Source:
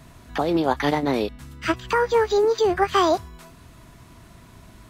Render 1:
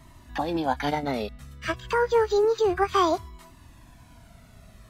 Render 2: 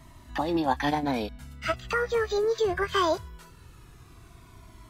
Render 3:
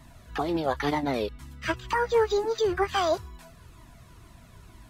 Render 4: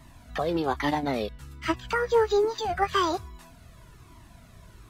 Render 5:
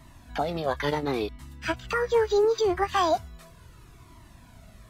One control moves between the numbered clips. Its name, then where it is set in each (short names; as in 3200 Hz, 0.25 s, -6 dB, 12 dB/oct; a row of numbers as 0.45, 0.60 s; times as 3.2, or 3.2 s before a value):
cascading flanger, rate: 0.3, 0.2, 2.1, 1.2, 0.72 Hz